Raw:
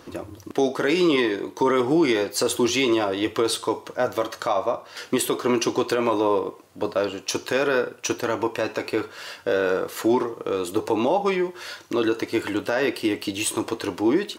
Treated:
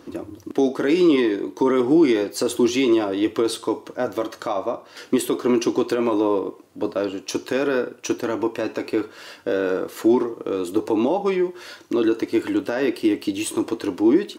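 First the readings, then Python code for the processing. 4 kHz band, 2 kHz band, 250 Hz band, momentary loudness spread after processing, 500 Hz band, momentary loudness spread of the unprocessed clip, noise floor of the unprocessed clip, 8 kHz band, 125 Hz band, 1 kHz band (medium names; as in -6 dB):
-3.5 dB, -3.5 dB, +4.5 dB, 10 LU, +1.0 dB, 8 LU, -47 dBFS, -3.5 dB, -1.5 dB, -3.0 dB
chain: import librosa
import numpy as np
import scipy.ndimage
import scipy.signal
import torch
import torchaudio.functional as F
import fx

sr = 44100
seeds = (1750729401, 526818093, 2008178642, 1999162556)

y = fx.peak_eq(x, sr, hz=290.0, db=9.0, octaves=1.1)
y = F.gain(torch.from_numpy(y), -3.5).numpy()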